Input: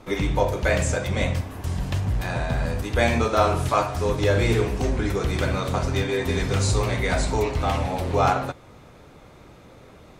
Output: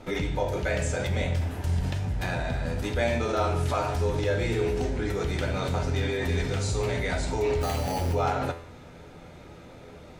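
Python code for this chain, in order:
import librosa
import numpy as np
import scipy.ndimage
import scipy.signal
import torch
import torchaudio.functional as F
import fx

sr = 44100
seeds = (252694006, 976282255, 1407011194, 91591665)

p1 = fx.high_shelf(x, sr, hz=11000.0, db=-7.5)
p2 = fx.notch(p1, sr, hz=1100.0, q=6.8)
p3 = fx.over_compress(p2, sr, threshold_db=-29.0, ratio=-1.0)
p4 = p2 + (p3 * librosa.db_to_amplitude(0.0))
p5 = fx.sample_hold(p4, sr, seeds[0], rate_hz=5300.0, jitter_pct=0, at=(7.6, 8.13), fade=0.02)
y = fx.comb_fb(p5, sr, f0_hz=84.0, decay_s=0.66, harmonics='all', damping=0.0, mix_pct=70)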